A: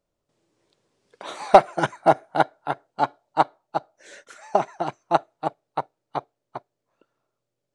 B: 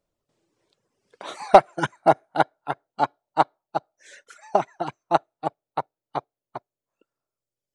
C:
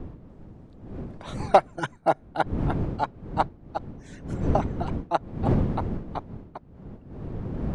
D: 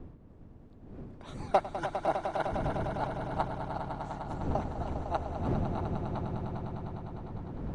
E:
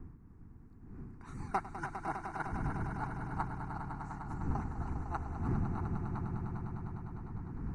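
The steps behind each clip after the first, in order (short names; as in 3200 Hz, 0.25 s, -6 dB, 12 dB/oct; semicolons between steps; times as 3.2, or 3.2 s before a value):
reverb removal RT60 1.8 s
wind noise 220 Hz -26 dBFS; gain -5 dB
swelling echo 0.101 s, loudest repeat 5, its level -10 dB; gain -9 dB
fixed phaser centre 1400 Hz, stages 4; gain -1 dB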